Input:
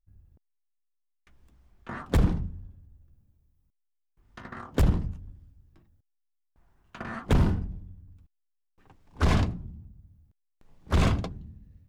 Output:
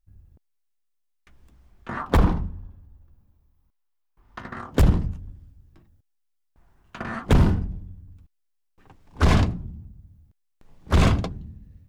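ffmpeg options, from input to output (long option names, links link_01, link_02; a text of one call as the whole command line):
ffmpeg -i in.wav -filter_complex "[0:a]asettb=1/sr,asplit=3[link_01][link_02][link_03];[link_01]atrim=end=1.974[link_04];[link_02]atrim=start=1.97:end=4.39,asetpts=PTS-STARTPTS,afade=type=in:duration=0.004:curve=qsin,afade=type=out:start_time=2.416:duration=0.004:curve=qsin,equalizer=frequency=125:width_type=o:width=1:gain=-4,equalizer=frequency=1000:width_type=o:width=1:gain=8,equalizer=frequency=8000:width_type=o:width=1:gain=-5[link_05];[link_03]atrim=start=4.386[link_06];[link_04][link_05]acrossfade=duration=0.004:curve1=hsin:curve2=qsin[link_07];[link_07][link_06]acrossfade=duration=0.004:curve1=qsin:curve2=hsin,volume=5dB" out.wav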